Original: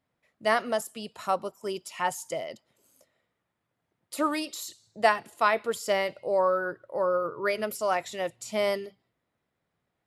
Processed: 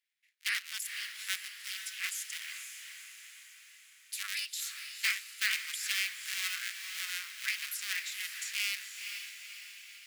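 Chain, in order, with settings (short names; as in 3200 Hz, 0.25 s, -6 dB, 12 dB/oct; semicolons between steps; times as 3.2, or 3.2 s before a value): cycle switcher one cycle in 3, inverted; steep high-pass 1900 Hz 36 dB/oct; on a send: diffused feedback echo 0.489 s, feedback 54%, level -7 dB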